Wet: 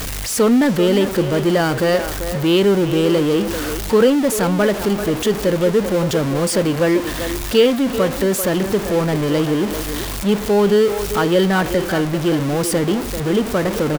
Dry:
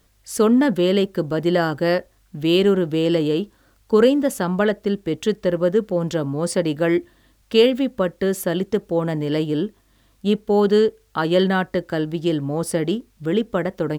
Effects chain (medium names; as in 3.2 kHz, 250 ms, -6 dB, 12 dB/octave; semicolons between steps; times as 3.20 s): jump at every zero crossing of -19.5 dBFS; speakerphone echo 390 ms, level -8 dB